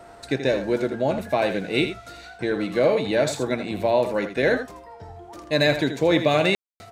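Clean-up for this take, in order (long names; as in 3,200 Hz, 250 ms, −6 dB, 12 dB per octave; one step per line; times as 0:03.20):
clipped peaks rebuilt −8 dBFS
notch filter 690 Hz, Q 30
ambience match 0:06.55–0:06.80
echo removal 81 ms −9.5 dB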